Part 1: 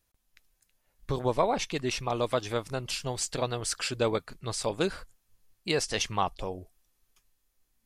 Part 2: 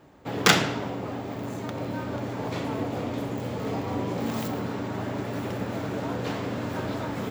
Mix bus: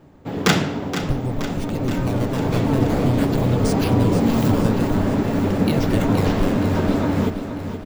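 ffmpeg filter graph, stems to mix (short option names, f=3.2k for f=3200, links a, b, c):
-filter_complex "[0:a]acrossover=split=140[a][b];[b]acompressor=threshold=-38dB:ratio=10[c];[a][c]amix=inputs=2:normalize=0,acrusher=samples=12:mix=1:aa=0.000001:lfo=1:lforange=19.2:lforate=0.49,volume=3dB,asplit=2[d][e];[e]volume=-8.5dB[f];[1:a]bandreject=f=60:t=h:w=6,bandreject=f=120:t=h:w=6,volume=-1dB,asplit=2[g][h];[h]volume=-10dB[i];[f][i]amix=inputs=2:normalize=0,aecho=0:1:473|946|1419|1892|2365|2838|3311|3784|4257:1|0.57|0.325|0.185|0.106|0.0602|0.0343|0.0195|0.0111[j];[d][g][j]amix=inputs=3:normalize=0,lowshelf=f=360:g=11,dynaudnorm=f=480:g=5:m=6dB"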